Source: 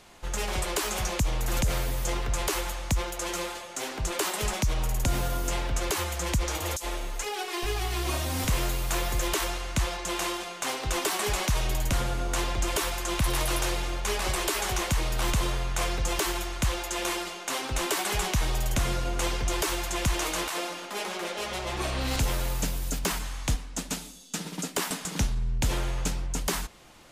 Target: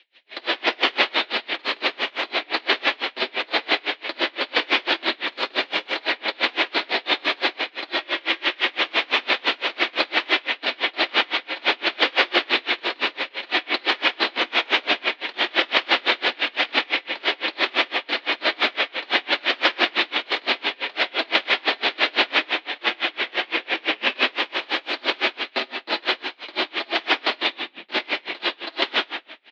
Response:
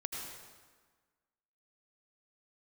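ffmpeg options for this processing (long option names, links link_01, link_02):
-filter_complex "[0:a]bandreject=frequency=50:width_type=h:width=6,bandreject=frequency=100:width_type=h:width=6,bandreject=frequency=150:width_type=h:width=6,bandreject=frequency=200:width_type=h:width=6,bandreject=frequency=250:width_type=h:width=6,bandreject=frequency=300:width_type=h:width=6,bandreject=frequency=350:width_type=h:width=6,dynaudnorm=framelen=120:gausssize=5:maxgain=12dB,alimiter=limit=-9dB:level=0:latency=1:release=25,aexciter=amount=5.2:drive=8.5:freq=2800,aeval=exprs='3.35*(cos(1*acos(clip(val(0)/3.35,-1,1)))-cos(1*PI/2))+0.0841*(cos(4*acos(clip(val(0)/3.35,-1,1)))-cos(4*PI/2))+1.5*(cos(6*acos(clip(val(0)/3.35,-1,1)))-cos(6*PI/2))+0.0531*(cos(7*acos(clip(val(0)/3.35,-1,1)))-cos(7*PI/2))+0.0668*(cos(8*acos(clip(val(0)/3.35,-1,1)))-cos(8*PI/2))':channel_layout=same,flanger=delay=2.6:depth=9.5:regen=25:speed=0.72:shape=triangular,asetrate=29433,aresample=44100,atempo=1.49831[link_01];[1:a]atrim=start_sample=2205,asetrate=83790,aresample=44100[link_02];[link_01][link_02]afir=irnorm=-1:irlink=0,asetrate=40517,aresample=44100,highpass=frequency=170:width_type=q:width=0.5412,highpass=frequency=170:width_type=q:width=1.307,lowpass=frequency=3500:width_type=q:width=0.5176,lowpass=frequency=3500:width_type=q:width=0.7071,lowpass=frequency=3500:width_type=q:width=1.932,afreqshift=100,aeval=exprs='val(0)*pow(10,-31*(0.5-0.5*cos(2*PI*5.9*n/s))/20)':channel_layout=same,volume=1.5dB"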